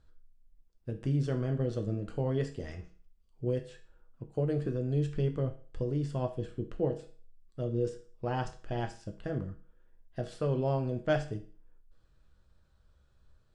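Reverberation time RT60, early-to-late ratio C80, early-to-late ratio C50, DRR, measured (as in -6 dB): 0.40 s, 17.0 dB, 12.0 dB, 4.5 dB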